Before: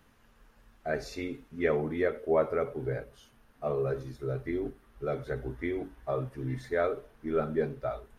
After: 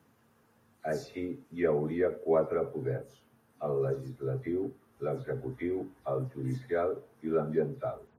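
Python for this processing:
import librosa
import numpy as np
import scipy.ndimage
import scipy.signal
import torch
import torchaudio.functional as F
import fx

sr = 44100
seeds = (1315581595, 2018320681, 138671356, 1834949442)

y = fx.spec_delay(x, sr, highs='early', ms=116)
y = scipy.signal.sosfilt(scipy.signal.butter(4, 95.0, 'highpass', fs=sr, output='sos'), y)
y = fx.peak_eq(y, sr, hz=2800.0, db=-8.0, octaves=2.4)
y = y * librosa.db_to_amplitude(1.0)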